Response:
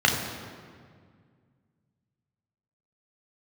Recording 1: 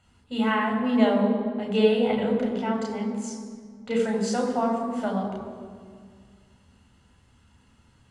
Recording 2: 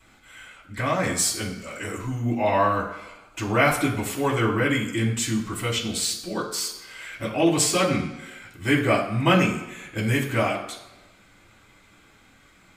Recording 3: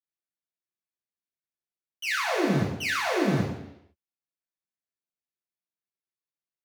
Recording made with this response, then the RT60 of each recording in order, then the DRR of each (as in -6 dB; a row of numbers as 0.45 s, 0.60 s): 1; 1.9 s, 1.1 s, 0.80 s; 0.0 dB, -5.5 dB, -6.0 dB